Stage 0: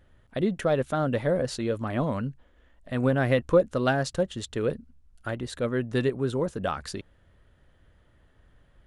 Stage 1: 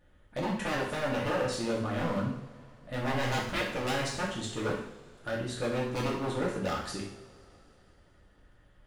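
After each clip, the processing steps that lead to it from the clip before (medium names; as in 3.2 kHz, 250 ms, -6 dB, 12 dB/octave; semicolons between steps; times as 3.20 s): wavefolder -24 dBFS; two-slope reverb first 0.64 s, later 3.5 s, from -22 dB, DRR -5 dB; trim -6.5 dB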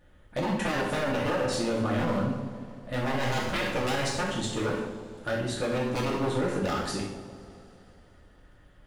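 peak limiter -24 dBFS, peak gain reduction 5.5 dB; bucket-brigade echo 158 ms, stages 1024, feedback 60%, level -9.5 dB; trim +4.5 dB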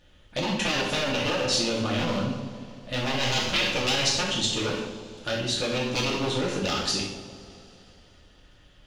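high-order bell 4.1 kHz +11.5 dB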